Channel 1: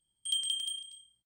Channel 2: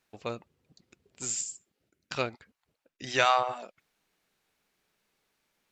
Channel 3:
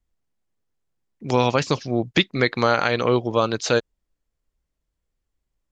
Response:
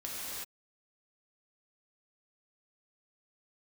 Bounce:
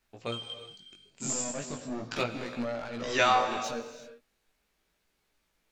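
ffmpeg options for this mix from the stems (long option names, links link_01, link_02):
-filter_complex "[0:a]afwtdn=0.01,volume=-8dB,asplit=2[link_01][link_02];[link_02]volume=-7.5dB[link_03];[1:a]volume=1dB,asplit=3[link_04][link_05][link_06];[link_05]volume=-10.5dB[link_07];[2:a]equalizer=frequency=250:width_type=o:width=0.33:gain=9,equalizer=frequency=630:width_type=o:width=0.33:gain=10,equalizer=frequency=5000:width_type=o:width=0.33:gain=-5,alimiter=limit=-14dB:level=0:latency=1:release=390,asoftclip=type=tanh:threshold=-26.5dB,volume=-4dB,asplit=2[link_08][link_09];[link_09]volume=-9dB[link_10];[link_06]apad=whole_len=55382[link_11];[link_01][link_11]sidechaingate=range=-33dB:threshold=-56dB:ratio=16:detection=peak[link_12];[3:a]atrim=start_sample=2205[link_13];[link_03][link_07][link_10]amix=inputs=3:normalize=0[link_14];[link_14][link_13]afir=irnorm=-1:irlink=0[link_15];[link_12][link_04][link_08][link_15]amix=inputs=4:normalize=0,flanger=delay=17:depth=4.7:speed=0.38"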